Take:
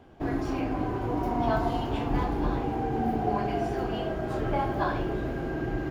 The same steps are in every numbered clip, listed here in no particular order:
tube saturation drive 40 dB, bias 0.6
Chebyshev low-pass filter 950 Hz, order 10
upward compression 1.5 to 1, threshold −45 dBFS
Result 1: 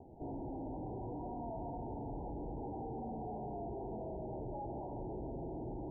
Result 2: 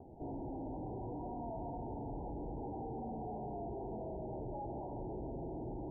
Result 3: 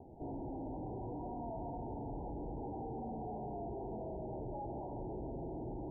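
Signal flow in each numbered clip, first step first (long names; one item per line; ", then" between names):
upward compression, then tube saturation, then Chebyshev low-pass filter
tube saturation, then Chebyshev low-pass filter, then upward compression
tube saturation, then upward compression, then Chebyshev low-pass filter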